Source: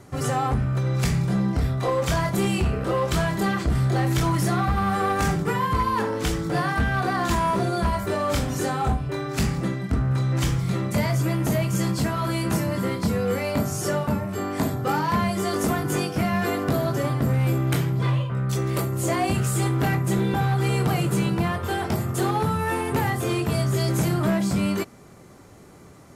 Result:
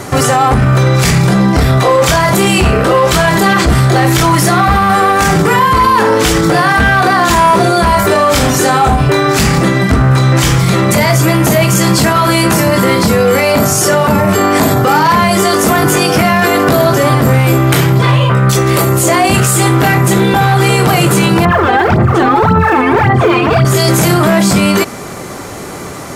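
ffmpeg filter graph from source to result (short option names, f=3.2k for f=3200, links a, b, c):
-filter_complex "[0:a]asettb=1/sr,asplit=3[a][b][c];[a]atrim=end=21.454[d];[b]atrim=start=21.45:end=23.65,asetpts=PTS-STARTPTS,afade=t=in:d=0.004:c=qsin,afade=t=out:st=2.196:d=0.004:c=qsin,lowpass=2.1k,aphaser=in_gain=1:out_gain=1:delay=4.1:decay=0.75:speed=1.8:type=sinusoidal[e];[c]atrim=start=23.646[f];[d][e]acrossfade=d=0.004:c1=hsin:c2=qsin[g];[g][f]acrossfade=d=0.004:c1=qsin:c2=hsin,lowshelf=f=300:g=-9,alimiter=level_in=28dB:limit=-1dB:release=50:level=0:latency=1,volume=-1dB"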